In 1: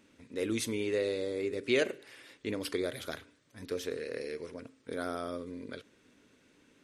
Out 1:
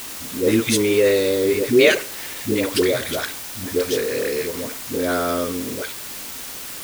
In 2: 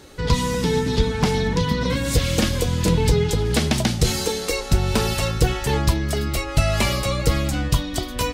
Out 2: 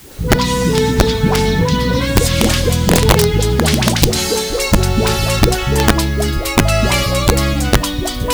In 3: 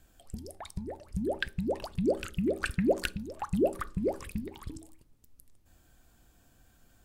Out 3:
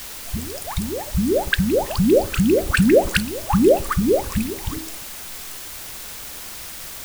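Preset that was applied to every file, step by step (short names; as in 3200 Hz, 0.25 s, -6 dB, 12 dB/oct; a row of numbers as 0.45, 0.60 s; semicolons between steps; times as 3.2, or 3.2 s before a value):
dispersion highs, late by 0.116 s, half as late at 510 Hz; wrapped overs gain 9 dB; requantised 8-bit, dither triangular; normalise peaks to -2 dBFS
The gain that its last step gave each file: +15.0, +7.0, +13.5 dB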